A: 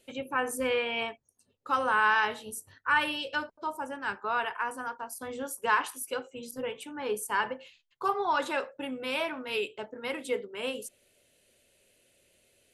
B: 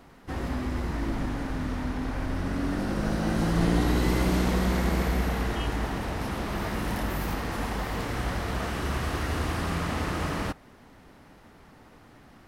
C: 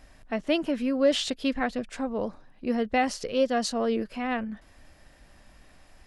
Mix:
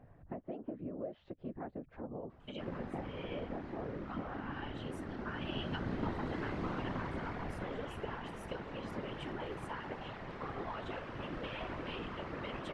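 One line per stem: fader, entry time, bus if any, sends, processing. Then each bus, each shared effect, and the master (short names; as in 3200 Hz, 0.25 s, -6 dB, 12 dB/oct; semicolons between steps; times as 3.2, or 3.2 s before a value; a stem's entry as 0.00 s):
+1.0 dB, 2.40 s, bus A, no send, bell 3100 Hz +10 dB 0.27 oct; compressor, threshold -33 dBFS, peak gain reduction 13 dB
-13.0 dB, 2.30 s, no bus, no send, LPF 2700 Hz 12 dB/oct; low shelf 67 Hz -9.5 dB
+1.5 dB, 0.00 s, bus A, no send, Bessel low-pass 750 Hz, order 2; tilt +1.5 dB/oct
bus A: 0.0 dB, tape spacing loss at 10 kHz 25 dB; compressor 8:1, threshold -41 dBFS, peak gain reduction 20.5 dB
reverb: off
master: whisperiser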